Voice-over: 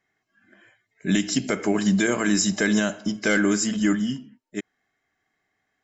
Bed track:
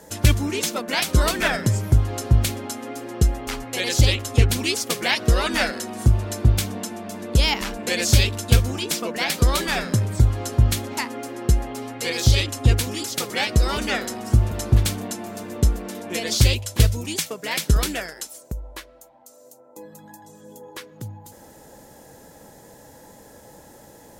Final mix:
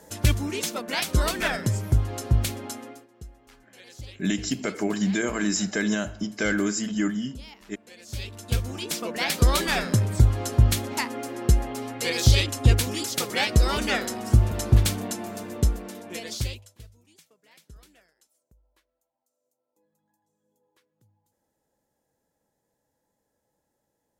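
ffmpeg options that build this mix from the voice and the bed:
-filter_complex "[0:a]adelay=3150,volume=-4dB[a];[1:a]volume=19.5dB,afade=t=out:st=2.75:d=0.32:silence=0.0944061,afade=t=in:st=8.06:d=1.43:silence=0.0630957,afade=t=out:st=15.24:d=1.54:silence=0.0316228[b];[a][b]amix=inputs=2:normalize=0"

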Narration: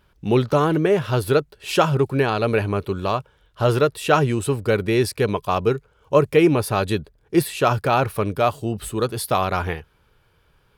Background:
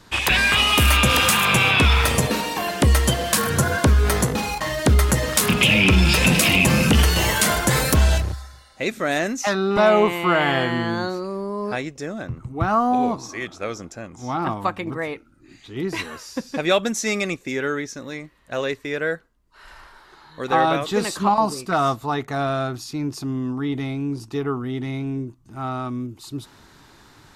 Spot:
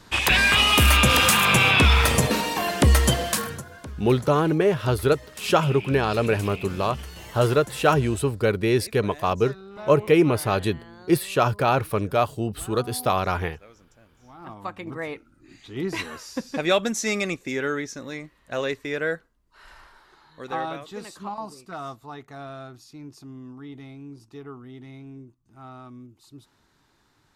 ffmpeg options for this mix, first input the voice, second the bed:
-filter_complex "[0:a]adelay=3750,volume=-2dB[a];[1:a]volume=19.5dB,afade=t=out:st=3.12:d=0.51:silence=0.0841395,afade=t=in:st=14.37:d=0.91:silence=0.1,afade=t=out:st=19.27:d=1.6:silence=0.223872[b];[a][b]amix=inputs=2:normalize=0"

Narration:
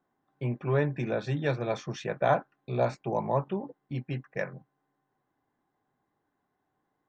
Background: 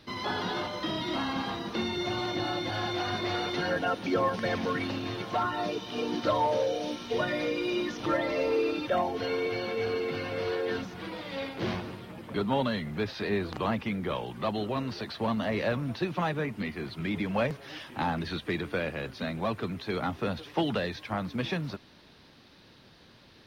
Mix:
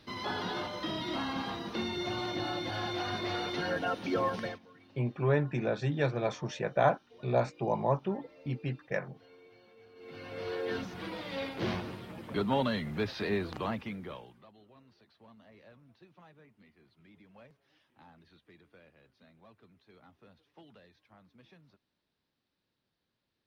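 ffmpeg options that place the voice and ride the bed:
-filter_complex "[0:a]adelay=4550,volume=-1dB[a];[1:a]volume=22.5dB,afade=t=out:st=4.39:d=0.2:silence=0.0630957,afade=t=in:st=9.95:d=0.95:silence=0.0501187,afade=t=out:st=13.23:d=1.23:silence=0.0473151[b];[a][b]amix=inputs=2:normalize=0"

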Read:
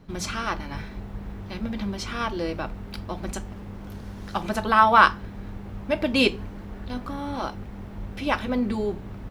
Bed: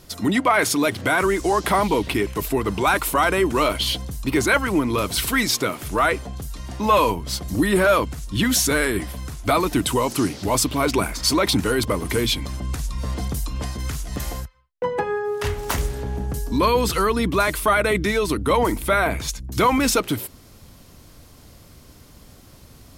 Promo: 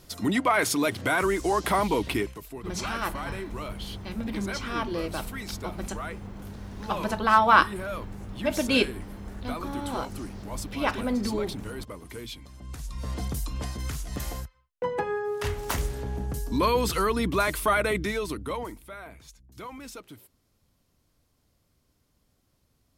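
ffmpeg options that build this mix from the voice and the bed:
-filter_complex "[0:a]adelay=2550,volume=-2.5dB[a];[1:a]volume=8dB,afade=t=out:st=2.18:d=0.22:silence=0.223872,afade=t=in:st=12.54:d=0.67:silence=0.223872,afade=t=out:st=17.76:d=1.08:silence=0.125893[b];[a][b]amix=inputs=2:normalize=0"

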